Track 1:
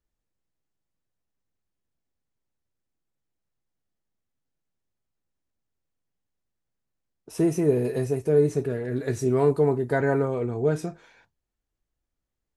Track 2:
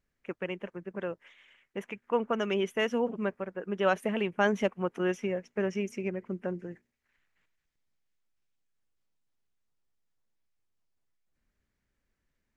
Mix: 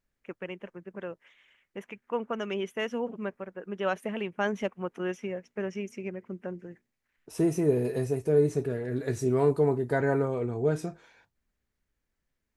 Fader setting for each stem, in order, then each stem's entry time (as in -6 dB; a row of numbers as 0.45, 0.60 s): -3.0, -3.0 dB; 0.00, 0.00 s